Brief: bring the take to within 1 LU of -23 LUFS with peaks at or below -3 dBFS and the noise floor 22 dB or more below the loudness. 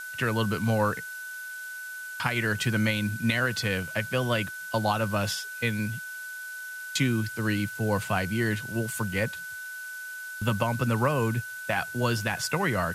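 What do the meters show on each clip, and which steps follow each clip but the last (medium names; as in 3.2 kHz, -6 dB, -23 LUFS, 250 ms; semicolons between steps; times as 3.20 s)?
steady tone 1.5 kHz; tone level -36 dBFS; noise floor -39 dBFS; noise floor target -51 dBFS; loudness -28.5 LUFS; peak level -10.5 dBFS; loudness target -23.0 LUFS
-> band-stop 1.5 kHz, Q 30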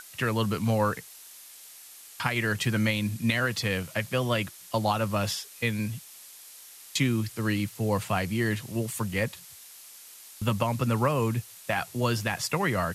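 steady tone not found; noise floor -49 dBFS; noise floor target -51 dBFS
-> noise print and reduce 6 dB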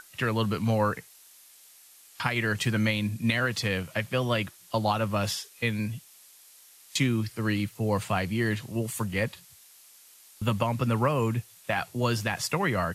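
noise floor -55 dBFS; loudness -28.5 LUFS; peak level -10.0 dBFS; loudness target -23.0 LUFS
-> trim +5.5 dB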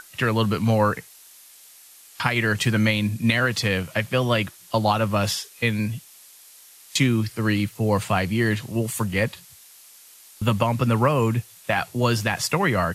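loudness -23.0 LUFS; peak level -4.5 dBFS; noise floor -49 dBFS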